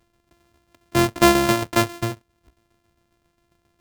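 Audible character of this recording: a buzz of ramps at a fixed pitch in blocks of 128 samples; tremolo saw down 7.4 Hz, depth 60%

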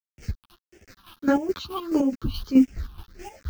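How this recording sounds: a quantiser's noise floor 8-bit, dither none; phasing stages 6, 1.6 Hz, lowest notch 520–1100 Hz; chopped level 4.7 Hz, depth 65%, duty 40%; a shimmering, thickened sound

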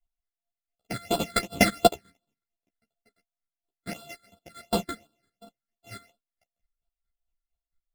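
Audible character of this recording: a buzz of ramps at a fixed pitch in blocks of 64 samples; phasing stages 8, 2.8 Hz, lowest notch 790–2000 Hz; chopped level 4.4 Hz, depth 65%, duty 25%; a shimmering, thickened sound

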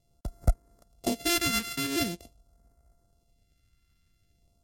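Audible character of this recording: a buzz of ramps at a fixed pitch in blocks of 64 samples; phasing stages 2, 0.45 Hz, lowest notch 650–2800 Hz; MP3

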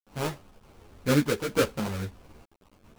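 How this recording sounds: aliases and images of a low sample rate 1900 Hz, jitter 20%; tremolo saw up 0.82 Hz, depth 70%; a quantiser's noise floor 10-bit, dither none; a shimmering, thickened sound

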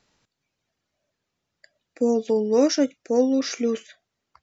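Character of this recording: noise floor -81 dBFS; spectral tilt -4.0 dB/oct

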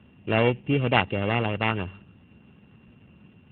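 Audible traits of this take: a buzz of ramps at a fixed pitch in blocks of 16 samples; AMR-NB

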